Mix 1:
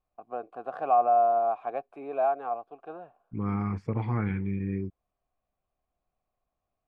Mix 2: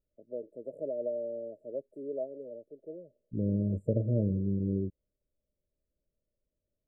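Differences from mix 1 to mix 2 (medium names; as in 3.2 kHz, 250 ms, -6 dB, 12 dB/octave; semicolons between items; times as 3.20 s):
second voice: add peaking EQ 610 Hz +13.5 dB 0.47 oct; master: add brick-wall FIR band-stop 640–7100 Hz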